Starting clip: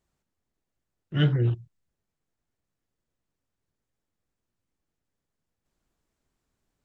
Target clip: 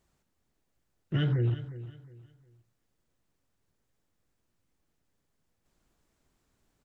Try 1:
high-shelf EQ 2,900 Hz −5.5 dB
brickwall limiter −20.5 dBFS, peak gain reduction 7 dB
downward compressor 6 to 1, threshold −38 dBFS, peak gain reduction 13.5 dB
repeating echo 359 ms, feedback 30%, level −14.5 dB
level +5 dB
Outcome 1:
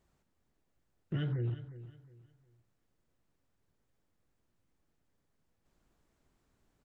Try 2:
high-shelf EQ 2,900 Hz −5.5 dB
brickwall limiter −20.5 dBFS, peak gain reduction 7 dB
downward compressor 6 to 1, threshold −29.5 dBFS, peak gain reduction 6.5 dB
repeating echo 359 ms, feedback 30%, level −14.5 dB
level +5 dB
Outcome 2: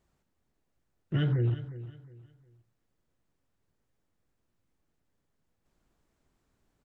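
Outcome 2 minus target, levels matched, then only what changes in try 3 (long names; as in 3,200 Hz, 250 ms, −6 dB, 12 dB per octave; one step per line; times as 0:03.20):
4,000 Hz band −2.5 dB
remove: high-shelf EQ 2,900 Hz −5.5 dB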